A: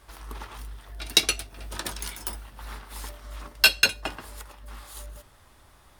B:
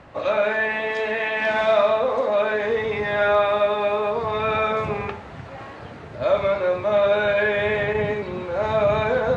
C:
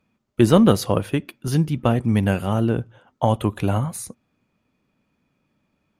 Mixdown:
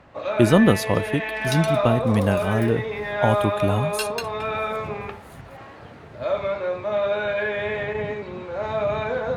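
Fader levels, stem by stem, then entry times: −12.5, −4.5, −1.5 decibels; 0.35, 0.00, 0.00 seconds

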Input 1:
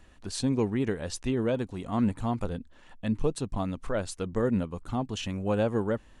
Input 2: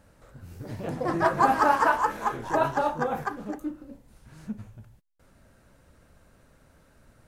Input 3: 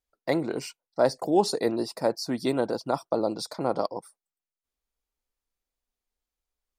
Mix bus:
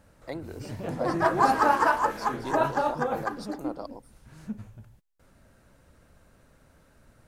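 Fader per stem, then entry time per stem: muted, −0.5 dB, −11.0 dB; muted, 0.00 s, 0.00 s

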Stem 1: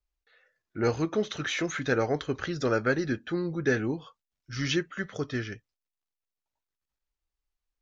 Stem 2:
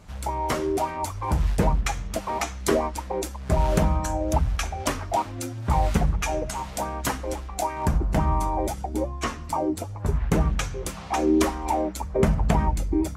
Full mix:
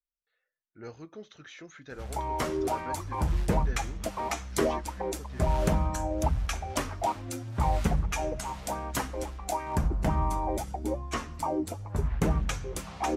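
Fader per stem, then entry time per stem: −17.0, −4.5 decibels; 0.00, 1.90 seconds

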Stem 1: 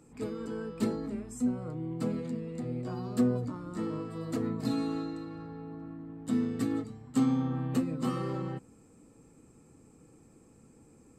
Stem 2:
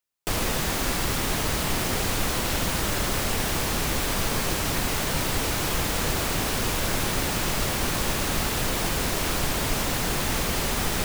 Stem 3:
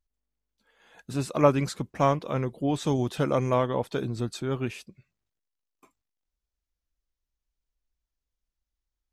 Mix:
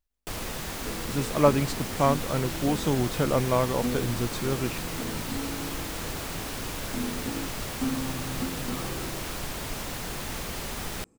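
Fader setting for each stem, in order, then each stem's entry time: −4.0, −8.5, 0.0 decibels; 0.65, 0.00, 0.00 seconds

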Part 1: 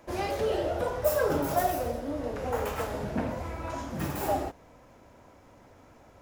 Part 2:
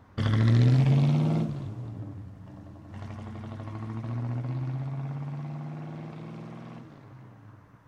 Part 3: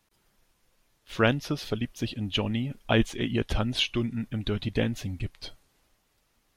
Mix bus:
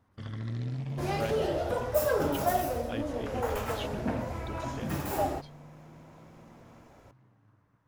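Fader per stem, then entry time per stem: −1.0, −14.0, −16.0 decibels; 0.90, 0.00, 0.00 seconds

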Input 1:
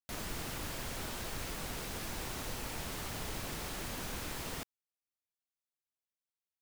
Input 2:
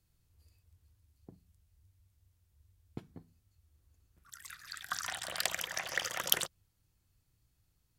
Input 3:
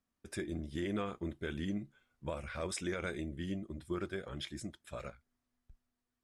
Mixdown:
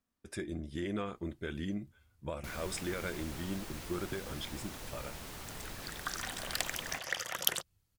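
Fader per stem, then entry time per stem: −5.0, −1.5, 0.0 decibels; 2.35, 1.15, 0.00 seconds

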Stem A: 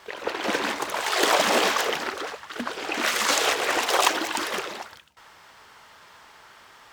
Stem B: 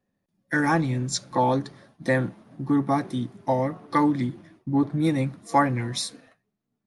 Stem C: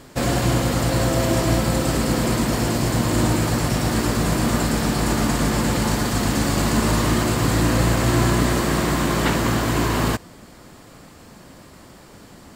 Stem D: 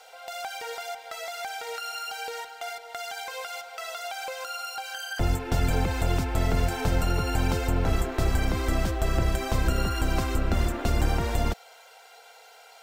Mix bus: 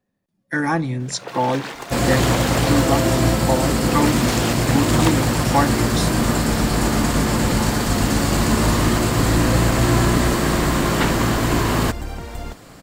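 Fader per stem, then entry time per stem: −5.0, +1.5, +1.5, −5.5 decibels; 1.00, 0.00, 1.75, 1.00 seconds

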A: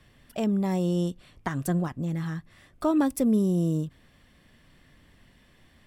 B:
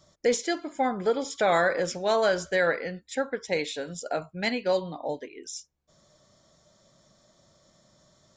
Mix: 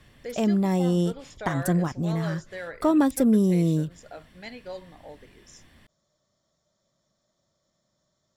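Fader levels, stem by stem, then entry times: +3.0, −13.0 decibels; 0.00, 0.00 seconds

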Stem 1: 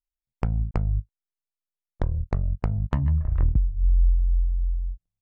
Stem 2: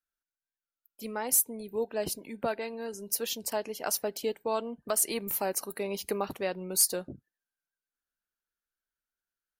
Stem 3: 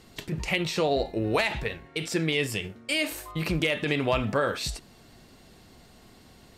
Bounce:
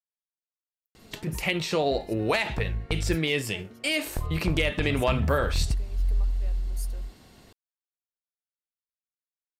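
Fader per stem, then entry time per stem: −5.5, −19.5, 0.0 decibels; 2.15, 0.00, 0.95 seconds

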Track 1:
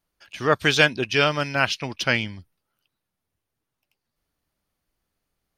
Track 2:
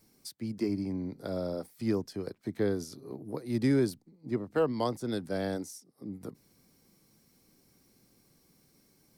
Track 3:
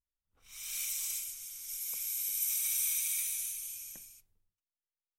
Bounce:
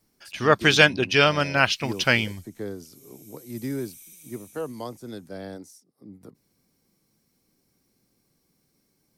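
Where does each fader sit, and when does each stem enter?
+1.5, −4.5, −16.0 decibels; 0.00, 0.00, 1.15 seconds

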